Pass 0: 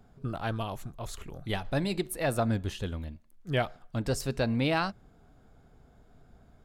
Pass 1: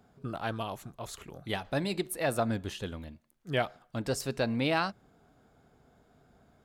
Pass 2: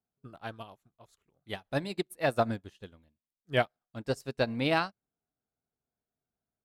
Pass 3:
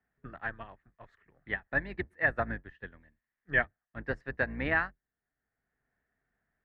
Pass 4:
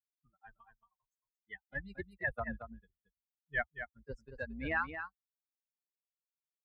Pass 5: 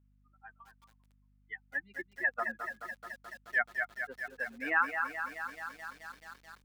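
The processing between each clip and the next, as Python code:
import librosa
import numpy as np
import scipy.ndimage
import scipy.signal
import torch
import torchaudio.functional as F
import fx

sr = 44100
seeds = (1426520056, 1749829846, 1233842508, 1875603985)

y1 = fx.highpass(x, sr, hz=180.0, slope=6)
y2 = fx.upward_expand(y1, sr, threshold_db=-48.0, expansion=2.5)
y2 = F.gain(torch.from_numpy(y2), 4.5).numpy()
y3 = fx.octave_divider(y2, sr, octaves=2, level_db=-1.0)
y3 = fx.lowpass_res(y3, sr, hz=1800.0, q=11.0)
y3 = fx.band_squash(y3, sr, depth_pct=40)
y3 = F.gain(torch.from_numpy(y3), -6.0).numpy()
y4 = fx.bin_expand(y3, sr, power=3.0)
y4 = fx.transient(y4, sr, attack_db=-5, sustain_db=5)
y4 = y4 + 10.0 ** (-9.0 / 20.0) * np.pad(y4, (int(226 * sr / 1000.0), 0))[:len(y4)]
y5 = fx.cabinet(y4, sr, low_hz=310.0, low_slope=24, high_hz=2700.0, hz=(400.0, 580.0, 1300.0), db=(-8, -9, 4))
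y5 = fx.add_hum(y5, sr, base_hz=50, snr_db=28)
y5 = fx.echo_crushed(y5, sr, ms=215, feedback_pct=80, bits=10, wet_db=-8.0)
y5 = F.gain(torch.from_numpy(y5), 5.0).numpy()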